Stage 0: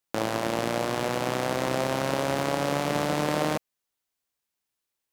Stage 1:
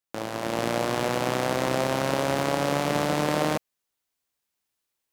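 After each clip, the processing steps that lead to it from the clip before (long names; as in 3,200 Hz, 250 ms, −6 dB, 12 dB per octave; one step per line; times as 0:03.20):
automatic gain control gain up to 8 dB
level −5.5 dB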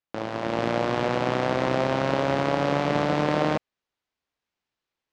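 high-frequency loss of the air 160 metres
level +2 dB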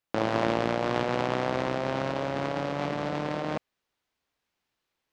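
compressor whose output falls as the input rises −29 dBFS, ratio −1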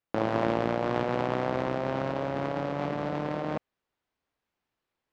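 high-shelf EQ 2,600 Hz −9.5 dB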